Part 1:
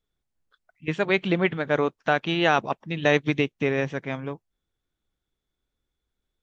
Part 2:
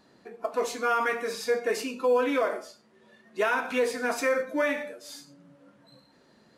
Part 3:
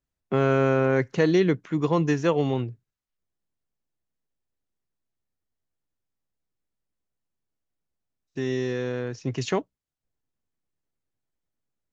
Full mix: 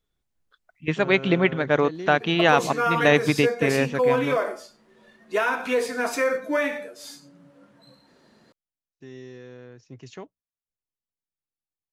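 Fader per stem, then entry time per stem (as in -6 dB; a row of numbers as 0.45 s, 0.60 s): +2.5 dB, +2.5 dB, -14.5 dB; 0.00 s, 1.95 s, 0.65 s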